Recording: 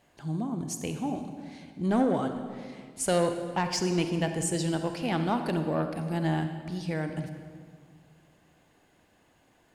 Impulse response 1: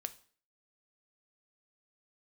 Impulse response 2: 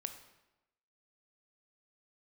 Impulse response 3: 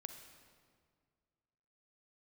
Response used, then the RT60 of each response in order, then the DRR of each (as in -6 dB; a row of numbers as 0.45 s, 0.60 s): 3; 0.45 s, 1.0 s, 2.0 s; 10.0 dB, 7.0 dB, 6.5 dB